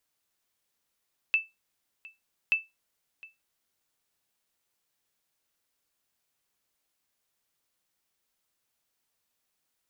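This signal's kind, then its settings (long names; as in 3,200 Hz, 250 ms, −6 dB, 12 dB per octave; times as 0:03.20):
ping with an echo 2,640 Hz, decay 0.20 s, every 1.18 s, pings 2, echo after 0.71 s, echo −22.5 dB −16 dBFS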